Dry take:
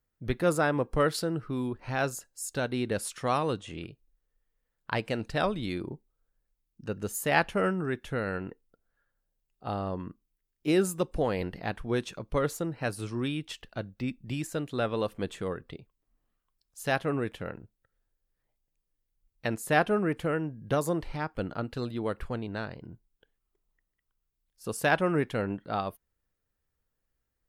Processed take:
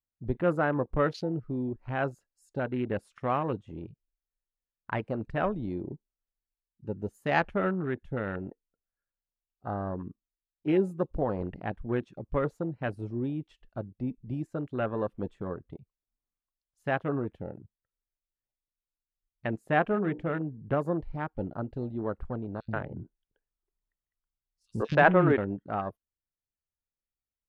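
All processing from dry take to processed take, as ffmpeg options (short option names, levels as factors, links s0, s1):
-filter_complex "[0:a]asettb=1/sr,asplit=3[s0][s1][s2];[s0]atrim=end=19.924[s3];[s1]atrim=start=19.92:end=20.41,asetpts=PTS-STARTPTS,afade=t=in:d=0.004:c=qsin,afade=t=out:st=0.486:d=0.004:c=qsin,lowpass=8000,bandreject=f=60:t=h:w=6,bandreject=f=120:t=h:w=6,bandreject=f=180:t=h:w=6,bandreject=f=240:t=h:w=6,bandreject=f=300:t=h:w=6,bandreject=f=360:t=h:w=6,bandreject=f=420:t=h:w=6,bandreject=f=480:t=h:w=6,bandreject=f=540:t=h:w=6[s4];[s2]atrim=start=20.406[s5];[s3][s4]acrossfade=d=0.004:c1=hsin:c2=qsin[s6];[s6][s5]acrossfade=d=0.004:c1=qsin:c2=hsin,asettb=1/sr,asplit=3[s7][s8][s9];[s7]atrim=end=22.604[s10];[s8]atrim=start=22.6:end=25.38,asetpts=PTS-STARTPTS,afade=t=in:d=0.004:c=qsin,afade=t=out:st=2.776:d=0.004:c=qsin,lowpass=7900,acontrast=74,acrossover=split=270|3300[s11][s12][s13];[s11]adelay=80[s14];[s12]adelay=130[s15];[s14][s15][s13]amix=inputs=3:normalize=0,atrim=end_sample=122598[s16];[s9]atrim=start=25.376[s17];[s10][s16]acrossfade=d=0.004:c1=hsin:c2=qsin[s18];[s18][s17]acrossfade=d=0.004:c1=qsin:c2=hsin,bandreject=f=470:w=14,afwtdn=0.0141,lowpass=f=2100:p=1"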